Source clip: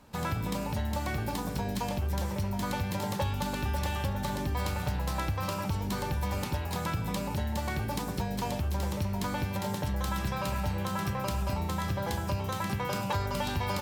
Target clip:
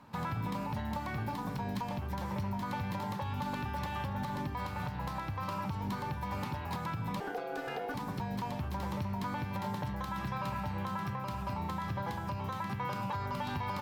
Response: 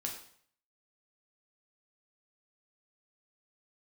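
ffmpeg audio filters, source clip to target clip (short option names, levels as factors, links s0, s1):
-filter_complex "[0:a]equalizer=f=125:t=o:w=1:g=10,equalizer=f=250:t=o:w=1:g=6,equalizer=f=1000:t=o:w=1:g=11,equalizer=f=2000:t=o:w=1:g=5,equalizer=f=4000:t=o:w=1:g=3,equalizer=f=8000:t=o:w=1:g=-4,asettb=1/sr,asplit=3[s0][s1][s2];[s0]atrim=end=7.204[s3];[s1]atrim=start=7.2:end=7.94,asetpts=PTS-STARTPTS,afade=t=in:d=0.004:c=qsin,afade=t=out:st=0.736:d=0.004:c=qsin,aeval=exprs='val(0)*sin(2*PI*600*n/s)':c=same[s4];[s2]atrim=start=7.936[s5];[s3][s4]acrossfade=d=0.004:c1=hsin:c2=qsin[s6];[s6][s5]acrossfade=d=0.004:c1=qsin:c2=hsin,highpass=f=67:p=1,alimiter=limit=0.1:level=0:latency=1:release=257,volume=0.447"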